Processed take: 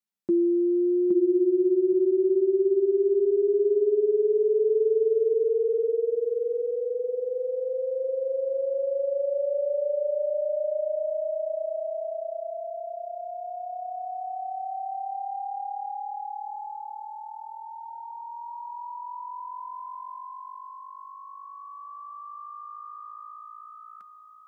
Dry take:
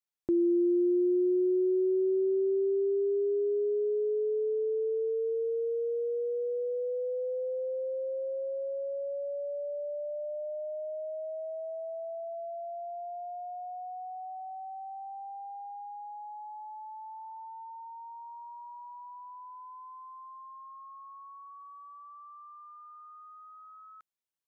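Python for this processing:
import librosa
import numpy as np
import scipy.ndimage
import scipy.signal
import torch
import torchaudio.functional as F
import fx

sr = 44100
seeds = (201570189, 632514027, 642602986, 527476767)

y = fx.highpass(x, sr, hz=130.0, slope=6)
y = fx.peak_eq(y, sr, hz=200.0, db=12.5, octaves=0.72)
y = y + 0.37 * np.pad(y, (int(5.1 * sr / 1000.0), 0))[:len(y)]
y = fx.dynamic_eq(y, sr, hz=360.0, q=3.0, threshold_db=-36.0, ratio=4.0, max_db=5)
y = fx.rider(y, sr, range_db=5, speed_s=0.5)
y = fx.echo_feedback(y, sr, ms=817, feedback_pct=25, wet_db=-4.5)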